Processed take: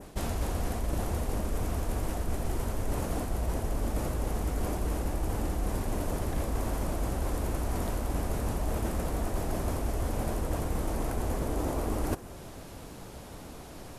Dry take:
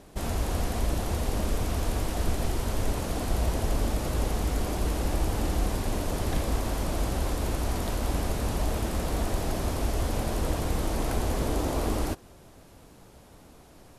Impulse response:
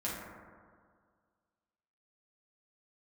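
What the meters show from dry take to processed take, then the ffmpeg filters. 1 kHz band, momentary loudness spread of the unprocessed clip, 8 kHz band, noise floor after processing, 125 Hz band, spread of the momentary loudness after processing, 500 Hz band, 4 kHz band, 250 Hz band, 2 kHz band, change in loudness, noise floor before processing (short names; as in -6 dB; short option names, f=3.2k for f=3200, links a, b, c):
-3.0 dB, 2 LU, -4.5 dB, -45 dBFS, -3.0 dB, 9 LU, -2.5 dB, -8.0 dB, -2.5 dB, -4.5 dB, -3.0 dB, -52 dBFS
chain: -af "adynamicequalizer=threshold=0.00158:dfrequency=3900:dqfactor=0.92:tfrequency=3900:tqfactor=0.92:attack=5:release=100:ratio=0.375:range=3.5:mode=cutabove:tftype=bell,areverse,acompressor=threshold=-35dB:ratio=6,areverse,volume=7.5dB"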